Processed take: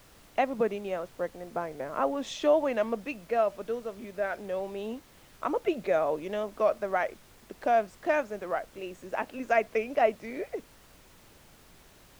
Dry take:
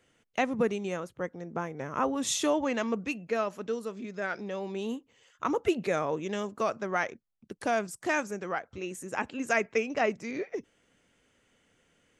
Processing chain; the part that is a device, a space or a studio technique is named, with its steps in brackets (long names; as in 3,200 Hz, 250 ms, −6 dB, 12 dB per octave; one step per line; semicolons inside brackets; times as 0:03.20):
horn gramophone (band-pass filter 200–3,700 Hz; parametric band 630 Hz +10 dB 0.53 octaves; tape wow and flutter; pink noise bed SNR 25 dB)
level −2.5 dB